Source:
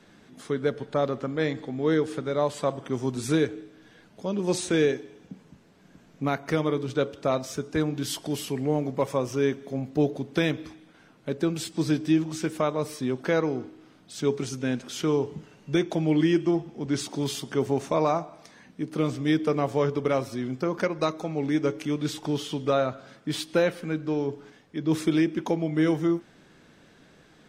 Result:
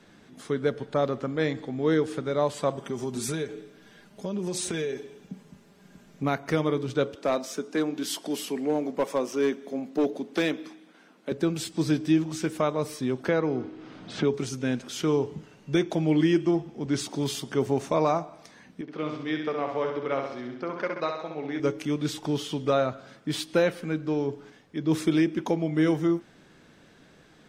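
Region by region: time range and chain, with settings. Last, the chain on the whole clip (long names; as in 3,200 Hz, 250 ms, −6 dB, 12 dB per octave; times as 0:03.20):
0:02.77–0:06.23: high-shelf EQ 7,900 Hz +7 dB + comb filter 5 ms, depth 50% + downward compressor 10 to 1, threshold −26 dBFS
0:07.15–0:11.32: Butterworth high-pass 190 Hz + hard clipping −18 dBFS
0:13.28–0:14.34: high-frequency loss of the air 110 metres + multiband upward and downward compressor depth 70%
0:18.81–0:21.60: high-pass filter 640 Hz 6 dB per octave + high-frequency loss of the air 210 metres + flutter between parallel walls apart 11.2 metres, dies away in 0.78 s
whole clip: no processing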